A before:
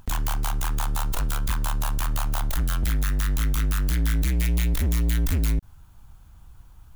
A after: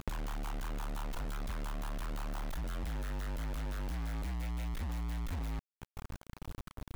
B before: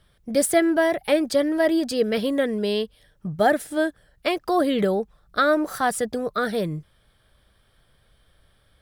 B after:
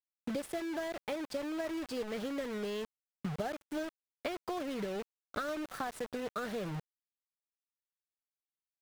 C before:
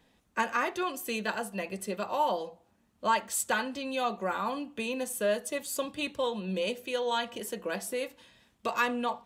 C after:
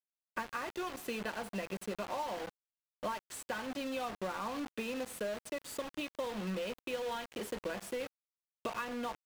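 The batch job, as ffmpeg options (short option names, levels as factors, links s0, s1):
-af "acompressor=threshold=0.0178:ratio=20,acrusher=bits=6:mix=0:aa=0.000001,highshelf=f=4900:g=-11.5,volume=1.12"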